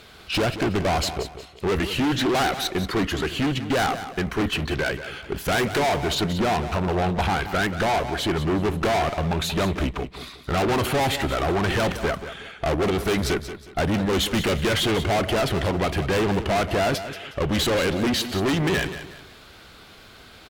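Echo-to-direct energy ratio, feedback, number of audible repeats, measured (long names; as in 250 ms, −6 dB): −11.0 dB, 32%, 3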